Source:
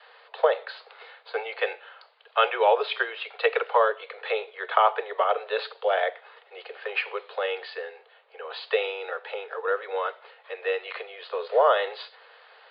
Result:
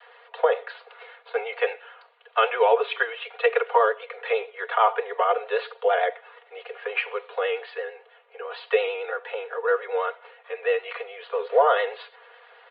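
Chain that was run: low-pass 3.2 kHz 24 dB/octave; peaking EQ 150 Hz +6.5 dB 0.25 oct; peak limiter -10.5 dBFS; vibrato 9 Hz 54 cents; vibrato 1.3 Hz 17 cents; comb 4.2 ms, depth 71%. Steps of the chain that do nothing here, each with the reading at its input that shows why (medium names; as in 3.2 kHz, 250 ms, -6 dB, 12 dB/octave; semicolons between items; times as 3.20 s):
peaking EQ 150 Hz: input has nothing below 360 Hz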